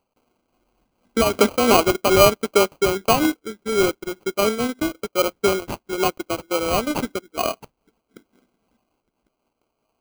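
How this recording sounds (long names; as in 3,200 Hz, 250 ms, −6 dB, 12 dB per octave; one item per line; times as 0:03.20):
aliases and images of a low sample rate 1,800 Hz, jitter 0%
amplitude modulation by smooth noise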